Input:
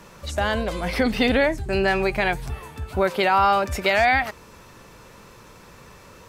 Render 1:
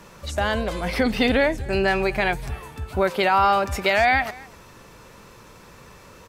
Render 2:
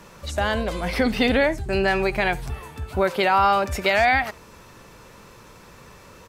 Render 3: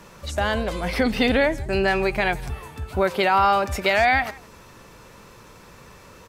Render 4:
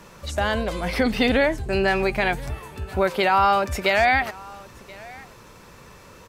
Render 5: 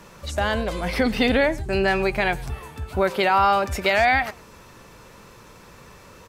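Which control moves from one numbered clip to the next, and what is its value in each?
delay, time: 248 ms, 71 ms, 164 ms, 1028 ms, 109 ms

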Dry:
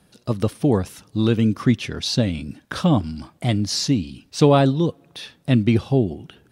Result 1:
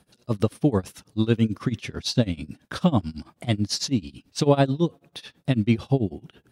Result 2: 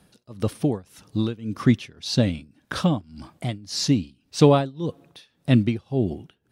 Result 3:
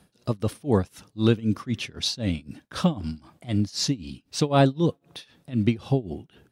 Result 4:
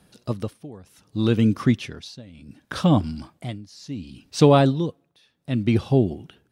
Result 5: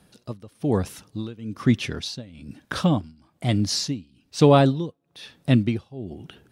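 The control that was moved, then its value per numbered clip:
tremolo, rate: 9.1 Hz, 1.8 Hz, 3.9 Hz, 0.67 Hz, 1.1 Hz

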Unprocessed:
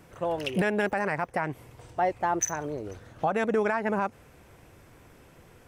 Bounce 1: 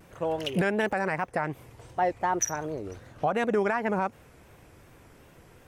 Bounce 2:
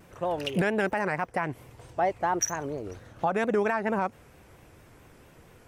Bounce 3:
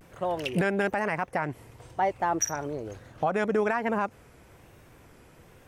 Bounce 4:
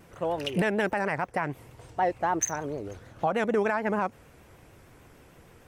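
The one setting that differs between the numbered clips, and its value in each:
vibrato, rate: 2.7 Hz, 4.4 Hz, 1.1 Hz, 6.6 Hz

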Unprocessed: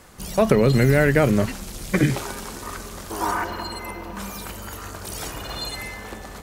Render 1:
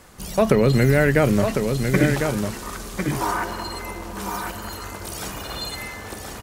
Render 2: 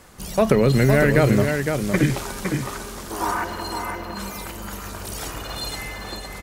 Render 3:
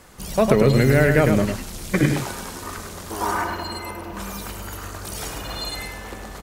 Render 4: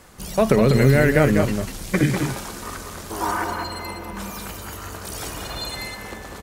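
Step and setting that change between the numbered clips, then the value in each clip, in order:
delay, time: 1051 ms, 510 ms, 103 ms, 197 ms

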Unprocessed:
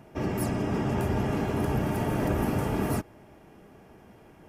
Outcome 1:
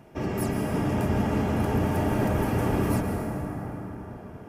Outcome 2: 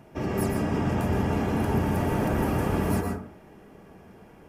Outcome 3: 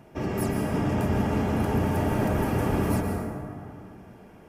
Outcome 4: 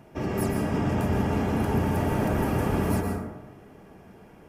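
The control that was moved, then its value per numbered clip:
plate-style reverb, RT60: 5.2 s, 0.53 s, 2.5 s, 1.1 s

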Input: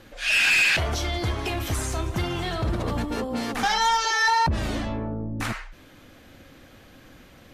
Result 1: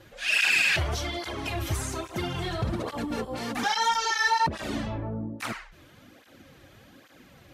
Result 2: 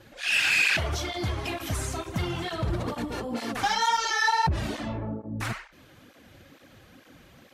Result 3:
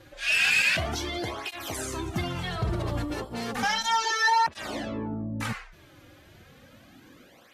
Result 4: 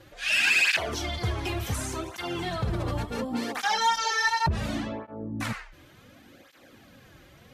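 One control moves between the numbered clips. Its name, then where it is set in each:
cancelling through-zero flanger, nulls at: 1.2 Hz, 2.2 Hz, 0.33 Hz, 0.69 Hz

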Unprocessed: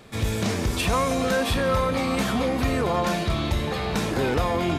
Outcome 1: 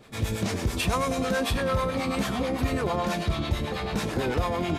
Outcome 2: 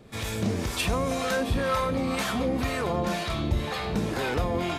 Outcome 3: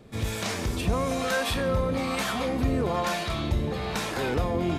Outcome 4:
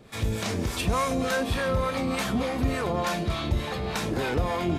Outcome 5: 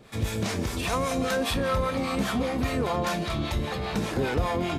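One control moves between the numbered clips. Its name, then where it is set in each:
harmonic tremolo, rate: 9.1 Hz, 2 Hz, 1.1 Hz, 3.4 Hz, 5 Hz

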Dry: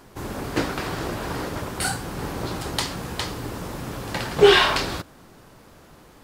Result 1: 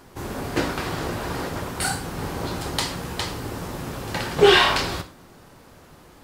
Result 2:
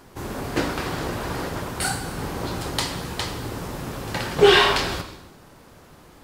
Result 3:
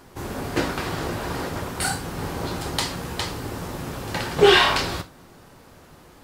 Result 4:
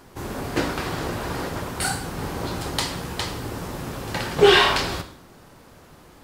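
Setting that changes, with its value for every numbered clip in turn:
gated-style reverb, gate: 150 ms, 380 ms, 100 ms, 220 ms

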